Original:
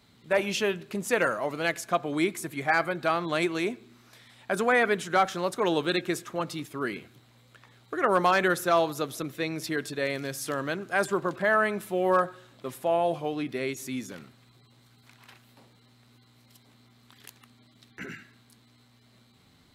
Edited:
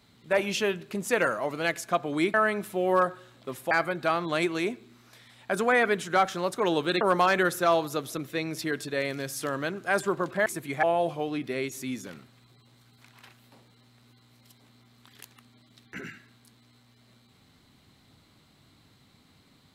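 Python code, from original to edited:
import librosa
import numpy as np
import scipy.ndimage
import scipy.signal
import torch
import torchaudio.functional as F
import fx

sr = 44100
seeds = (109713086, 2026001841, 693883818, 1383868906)

y = fx.edit(x, sr, fx.swap(start_s=2.34, length_s=0.37, other_s=11.51, other_length_s=1.37),
    fx.cut(start_s=6.01, length_s=2.05), tone=tone)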